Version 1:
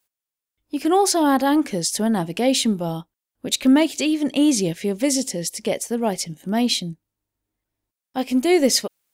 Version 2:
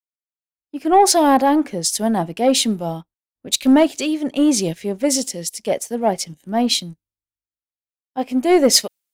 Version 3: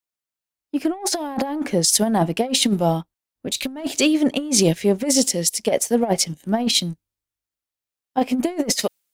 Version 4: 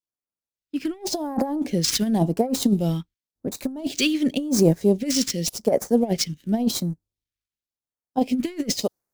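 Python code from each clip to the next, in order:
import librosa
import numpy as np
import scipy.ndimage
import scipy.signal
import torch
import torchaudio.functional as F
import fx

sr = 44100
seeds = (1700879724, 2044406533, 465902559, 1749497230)

y1 = fx.dynamic_eq(x, sr, hz=710.0, q=1.6, threshold_db=-32.0, ratio=4.0, max_db=6)
y1 = fx.leveller(y1, sr, passes=1)
y1 = fx.band_widen(y1, sr, depth_pct=70)
y1 = y1 * 10.0 ** (-2.5 / 20.0)
y2 = fx.over_compress(y1, sr, threshold_db=-20.0, ratio=-0.5)
y2 = y2 * 10.0 ** (1.5 / 20.0)
y3 = scipy.ndimage.median_filter(y2, 5, mode='constant')
y3 = fx.phaser_stages(y3, sr, stages=2, low_hz=680.0, high_hz=3000.0, hz=0.91, feedback_pct=25)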